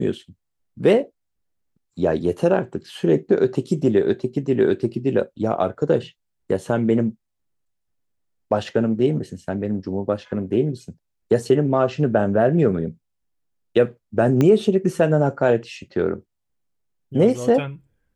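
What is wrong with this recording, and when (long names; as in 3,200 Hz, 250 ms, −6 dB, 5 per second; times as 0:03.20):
0:14.41: click −8 dBFS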